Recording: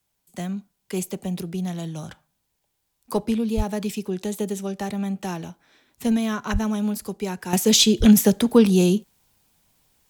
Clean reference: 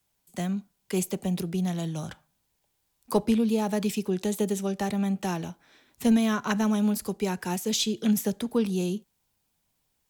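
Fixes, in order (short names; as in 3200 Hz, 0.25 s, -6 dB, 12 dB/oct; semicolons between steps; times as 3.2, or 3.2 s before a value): 3.56–3.68 HPF 140 Hz 24 dB/oct; 6.52–6.64 HPF 140 Hz 24 dB/oct; 7.53 gain correction -10.5 dB; 7.99–8.11 HPF 140 Hz 24 dB/oct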